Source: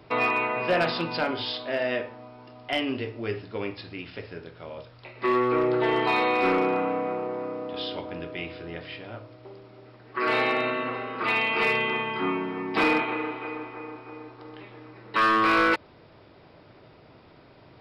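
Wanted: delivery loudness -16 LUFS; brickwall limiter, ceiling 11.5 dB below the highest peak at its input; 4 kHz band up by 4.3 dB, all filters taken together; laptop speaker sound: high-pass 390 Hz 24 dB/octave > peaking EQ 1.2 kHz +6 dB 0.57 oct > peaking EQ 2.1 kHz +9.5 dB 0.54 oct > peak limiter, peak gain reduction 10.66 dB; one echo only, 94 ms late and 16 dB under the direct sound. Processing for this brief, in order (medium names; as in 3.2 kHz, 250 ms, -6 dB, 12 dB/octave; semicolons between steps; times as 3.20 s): peaking EQ 4 kHz +3.5 dB; peak limiter -25.5 dBFS; high-pass 390 Hz 24 dB/octave; peaking EQ 1.2 kHz +6 dB 0.57 oct; peaking EQ 2.1 kHz +9.5 dB 0.54 oct; delay 94 ms -16 dB; trim +19 dB; peak limiter -7.5 dBFS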